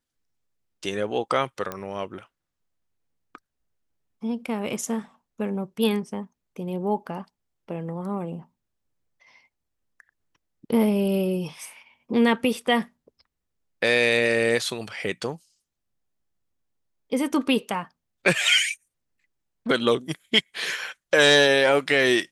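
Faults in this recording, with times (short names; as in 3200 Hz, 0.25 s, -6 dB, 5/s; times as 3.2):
1.72 pop -16 dBFS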